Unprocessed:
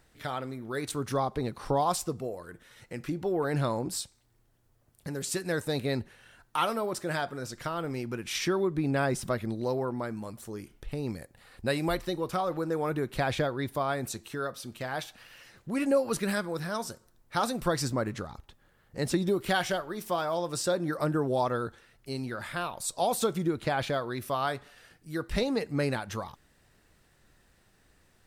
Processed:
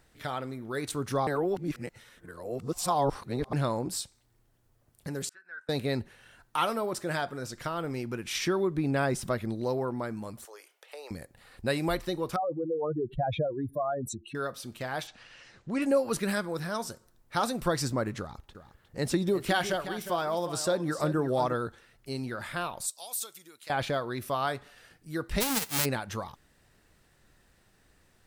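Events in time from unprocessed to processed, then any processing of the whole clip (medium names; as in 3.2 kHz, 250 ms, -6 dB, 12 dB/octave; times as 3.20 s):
1.27–3.53 s: reverse
5.29–5.69 s: band-pass filter 1.5 kHz, Q 15
10.45–11.11 s: steep high-pass 500 Hz
12.36–14.35 s: spectral contrast enhancement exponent 3
15.07–15.82 s: low-pass 7.5 kHz 24 dB/octave
18.19–21.54 s: delay 358 ms -12 dB
22.86–23.70 s: differentiator
25.40–25.84 s: formants flattened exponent 0.1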